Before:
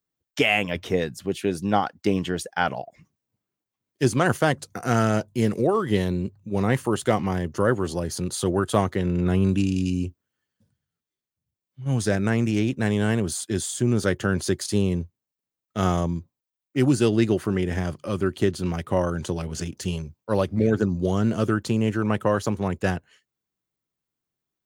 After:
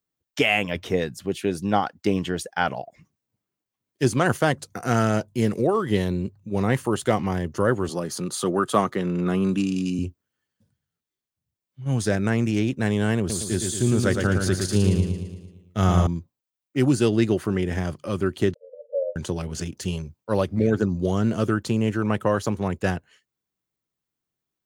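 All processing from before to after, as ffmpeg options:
ffmpeg -i in.wav -filter_complex "[0:a]asettb=1/sr,asplit=3[link_01][link_02][link_03];[link_01]atrim=end=7.894[link_04];[link_02]atrim=start=7.89:end=9.99,asetpts=PTS-STARTPTS,afade=type=in:duration=0.004:curve=qsin,afade=type=out:start_time=2.096:duration=0.004:curve=qsin,highpass=frequency=140:width=0.5412,highpass=frequency=140:width=1.3066,equalizer=frequency=1200:width_type=o:width=0.24:gain=9[link_05];[link_03]atrim=start=9.986[link_06];[link_04][link_05]acrossfade=duration=0.004:curve1=hsin:curve2=qsin[link_07];[link_07][link_06]acrossfade=duration=0.004:curve1=qsin:curve2=hsin,asettb=1/sr,asplit=3[link_08][link_09][link_10];[link_08]atrim=end=13.184[link_11];[link_09]atrim=start=13.18:end=16.07,asetpts=PTS-STARTPTS,afade=type=in:duration=0.004:curve=qsin,afade=type=out:start_time=2.886:duration=0.004:curve=qsin,asubboost=boost=2.5:cutoff=180,aecho=1:1:113|226|339|452|565|678|791:0.562|0.298|0.158|0.0837|0.0444|0.0235|0.0125,atrim=end_sample=127449[link_12];[link_10]atrim=start=16.066[link_13];[link_11][link_12]acrossfade=duration=0.004:curve1=hsin:curve2=qsin[link_14];[link_14][link_13]acrossfade=duration=0.004:curve1=qsin:curve2=hsin,asettb=1/sr,asplit=3[link_15][link_16][link_17];[link_15]atrim=end=18.544[link_18];[link_16]atrim=start=18.54:end=19.16,asetpts=PTS-STARTPTS,afade=type=in:duration=0.004:curve=qsin,afade=type=out:start_time=0.616:duration=0.004:curve=qsin,asuperpass=centerf=530:order=20:qfactor=3.2,asplit=2[link_19][link_20];[link_20]adelay=46,volume=-14dB[link_21];[link_19][link_21]amix=inputs=2:normalize=0,atrim=end_sample=27342[link_22];[link_17]atrim=start=19.156[link_23];[link_18][link_22]acrossfade=duration=0.004:curve1=hsin:curve2=qsin[link_24];[link_24][link_23]acrossfade=duration=0.004:curve1=qsin:curve2=hsin" out.wav

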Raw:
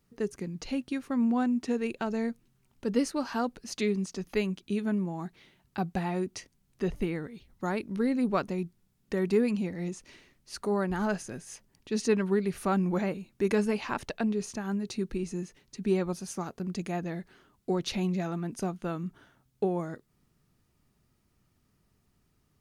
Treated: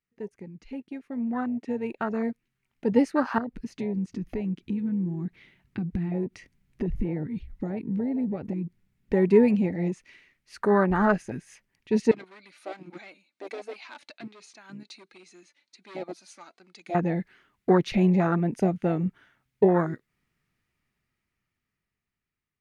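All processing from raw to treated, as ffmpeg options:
ffmpeg -i in.wav -filter_complex "[0:a]asettb=1/sr,asplit=3[link_01][link_02][link_03];[link_01]atrim=end=3.384[link_04];[link_02]atrim=start=3.38:end=9.13,asetpts=PTS-STARTPTS,afade=type=in:duration=0.004:curve=qsin,afade=type=out:start_time=5.746:duration=0.004:curve=qsin,acompressor=threshold=-44dB:ratio=4:attack=3.2:release=140:knee=1:detection=peak,lowshelf=frequency=430:gain=11.5[link_05];[link_03]atrim=start=9.126[link_06];[link_04][link_05]acrossfade=duration=0.004:curve1=hsin:curve2=qsin[link_07];[link_07][link_06]acrossfade=duration=0.004:curve1=qsin:curve2=hsin,asettb=1/sr,asplit=3[link_08][link_09][link_10];[link_08]atrim=end=12.114[link_11];[link_09]atrim=start=12.11:end=16.95,asetpts=PTS-STARTPTS,afade=type=in:duration=0.004:curve=qsin,afade=type=out:start_time=4.836:duration=0.004:curve=qsin,flanger=delay=2.3:depth=1.2:regen=38:speed=1.3:shape=sinusoidal,volume=31dB,asoftclip=hard,volume=-31dB,highpass=380,equalizer=frequency=410:width_type=q:width=4:gain=-9,equalizer=frequency=1100:width_type=q:width=4:gain=-3,equalizer=frequency=1800:width_type=q:width=4:gain=-8,equalizer=frequency=2800:width_type=q:width=4:gain=-4,equalizer=frequency=4100:width_type=q:width=4:gain=8,lowpass=frequency=9900:width=0.5412,lowpass=frequency=9900:width=1.3066[link_12];[link_10]atrim=start=16.946[link_13];[link_11][link_12]acrossfade=duration=0.004:curve1=hsin:curve2=qsin[link_14];[link_14][link_13]acrossfade=duration=0.004:curve1=qsin:curve2=hsin,afwtdn=0.0251,dynaudnorm=framelen=510:gausssize=9:maxgain=15.5dB,equalizer=frequency=2100:width=1.1:gain=14.5,volume=-6dB" out.wav

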